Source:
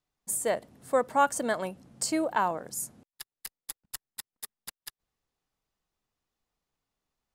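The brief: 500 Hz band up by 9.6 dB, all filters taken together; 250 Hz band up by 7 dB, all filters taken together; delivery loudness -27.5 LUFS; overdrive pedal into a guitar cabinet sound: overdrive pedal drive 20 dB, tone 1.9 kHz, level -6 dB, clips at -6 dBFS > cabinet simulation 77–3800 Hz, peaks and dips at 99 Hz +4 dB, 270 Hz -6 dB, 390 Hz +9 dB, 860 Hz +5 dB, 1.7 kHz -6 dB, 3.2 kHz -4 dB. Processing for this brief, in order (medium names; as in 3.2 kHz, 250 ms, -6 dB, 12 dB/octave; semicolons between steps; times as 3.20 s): peaking EQ 250 Hz +6.5 dB; peaking EQ 500 Hz +7.5 dB; overdrive pedal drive 20 dB, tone 1.9 kHz, level -6 dB, clips at -6 dBFS; cabinet simulation 77–3800 Hz, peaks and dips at 99 Hz +4 dB, 270 Hz -6 dB, 390 Hz +9 dB, 860 Hz +5 dB, 1.7 kHz -6 dB, 3.2 kHz -4 dB; trim -10.5 dB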